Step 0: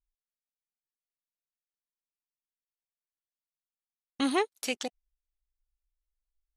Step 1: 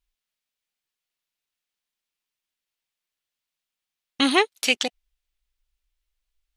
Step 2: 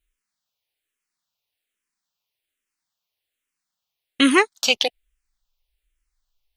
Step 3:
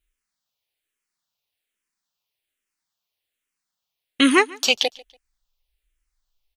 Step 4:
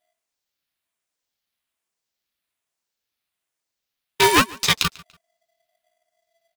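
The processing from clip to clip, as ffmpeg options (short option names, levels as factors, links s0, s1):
-af "equalizer=f=3000:t=o:w=1.7:g=8.5,volume=2"
-filter_complex "[0:a]asplit=2[s0][s1];[s1]afreqshift=-1.2[s2];[s0][s2]amix=inputs=2:normalize=1,volume=2"
-af "aecho=1:1:144|288:0.0708|0.0212"
-af "aeval=exprs='val(0)*sgn(sin(2*PI*670*n/s))':c=same"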